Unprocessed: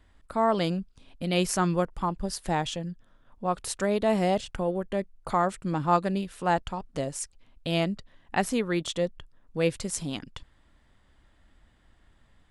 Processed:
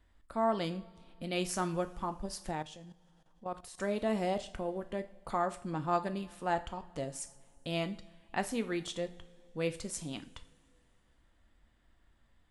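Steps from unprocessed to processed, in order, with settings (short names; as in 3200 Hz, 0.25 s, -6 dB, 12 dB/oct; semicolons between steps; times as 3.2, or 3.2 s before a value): two-slope reverb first 0.41 s, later 2.9 s, from -22 dB, DRR 8 dB; 2.51–3.78 level quantiser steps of 14 dB; gain -8 dB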